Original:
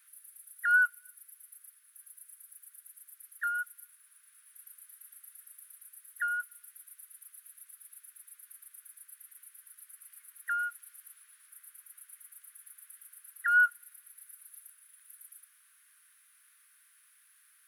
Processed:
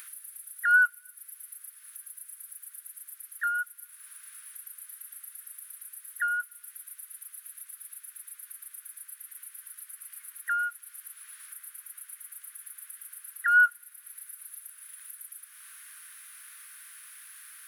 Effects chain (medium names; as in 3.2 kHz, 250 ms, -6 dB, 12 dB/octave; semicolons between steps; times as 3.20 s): upward compressor, threshold -40 dBFS; trim +3.5 dB